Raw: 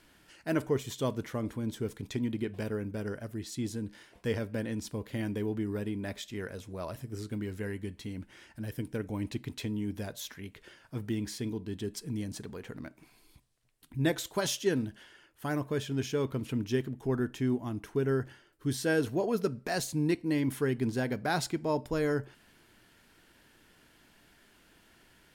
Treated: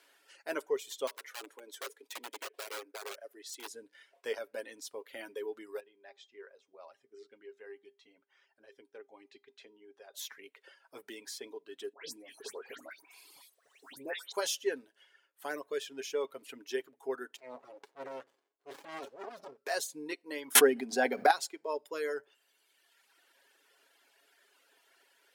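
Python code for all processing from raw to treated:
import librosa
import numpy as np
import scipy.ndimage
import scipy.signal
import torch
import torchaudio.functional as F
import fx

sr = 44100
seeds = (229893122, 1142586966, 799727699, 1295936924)

y = fx.chain(x, sr, fx.highpass(hz=310.0, slope=24),
    fx.overflow_wrap(gain_db=33.0), at=(1.07, 3.7))
y = fx.chain(y, sr, fx.air_absorb(metres=130.0),
    fx.comb_fb(f0_hz=400.0, decay_s=0.33, harmonics='all', damping=0.0, mix_pct=70), at=(5.8, 10.14))
y = fx.chain(y, sr, fx.dispersion(late='highs', ms=144.0, hz=2400.0),
    fx.band_squash(depth_pct=70), at=(11.93, 14.32))
y = fx.chain(y, sr, fx.lowpass(hz=6200.0, slope=12),
    fx.transient(attack_db=-10, sustain_db=5),
    fx.running_max(window=65), at=(17.36, 19.57))
y = fx.chain(y, sr, fx.small_body(hz=(230.0, 740.0), ring_ms=80, db=15),
    fx.env_flatten(amount_pct=100), at=(20.55, 21.31))
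y = scipy.signal.sosfilt(scipy.signal.cheby1(3, 1.0, 440.0, 'highpass', fs=sr, output='sos'), y)
y = fx.dereverb_blind(y, sr, rt60_s=1.5)
y = y + 0.39 * np.pad(y, (int(7.3 * sr / 1000.0), 0))[:len(y)]
y = y * librosa.db_to_amplitude(-1.5)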